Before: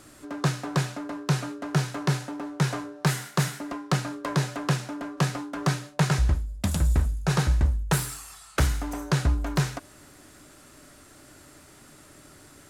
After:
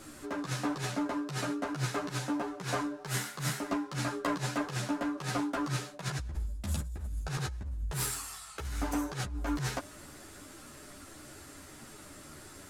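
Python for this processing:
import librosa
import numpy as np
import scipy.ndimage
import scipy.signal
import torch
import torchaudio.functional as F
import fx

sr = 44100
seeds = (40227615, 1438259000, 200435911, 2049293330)

y = fx.over_compress(x, sr, threshold_db=-30.0, ratio=-1.0)
y = fx.ensemble(y, sr)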